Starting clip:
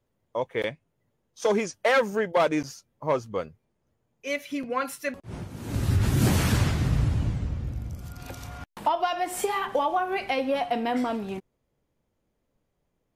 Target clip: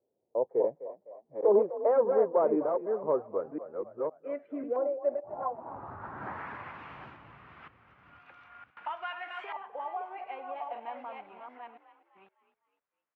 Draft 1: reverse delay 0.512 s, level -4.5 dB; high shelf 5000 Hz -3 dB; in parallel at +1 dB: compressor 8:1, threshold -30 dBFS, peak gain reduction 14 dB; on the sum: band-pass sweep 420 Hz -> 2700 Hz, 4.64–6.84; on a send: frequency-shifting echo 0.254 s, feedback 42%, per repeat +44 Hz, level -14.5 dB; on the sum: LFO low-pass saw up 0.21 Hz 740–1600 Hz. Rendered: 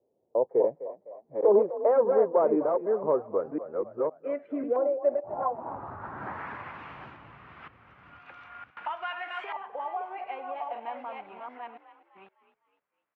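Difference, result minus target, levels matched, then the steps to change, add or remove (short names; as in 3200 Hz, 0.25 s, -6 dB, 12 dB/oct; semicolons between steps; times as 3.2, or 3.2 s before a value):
compressor: peak gain reduction +14 dB
remove: compressor 8:1, threshold -30 dBFS, peak gain reduction 14 dB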